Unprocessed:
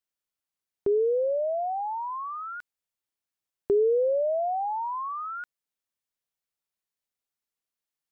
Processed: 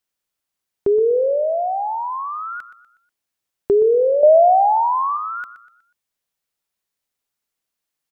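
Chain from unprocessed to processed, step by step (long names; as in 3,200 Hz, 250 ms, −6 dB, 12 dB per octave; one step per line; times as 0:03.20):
0:04.23–0:05.17: parametric band 290 Hz +13.5 dB 2.9 octaves
on a send: repeating echo 122 ms, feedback 40%, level −13.5 dB
on the sum: level +7.5 dB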